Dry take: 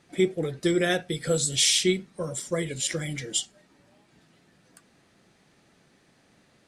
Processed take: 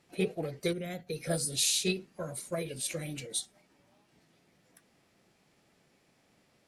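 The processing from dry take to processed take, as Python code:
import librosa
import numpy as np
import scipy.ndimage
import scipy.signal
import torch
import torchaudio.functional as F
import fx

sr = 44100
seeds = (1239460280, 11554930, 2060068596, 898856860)

y = fx.spec_box(x, sr, start_s=0.73, length_s=0.34, low_hz=280.0, high_hz=10000.0, gain_db=-11)
y = fx.formant_shift(y, sr, semitones=3)
y = y * 10.0 ** (-6.5 / 20.0)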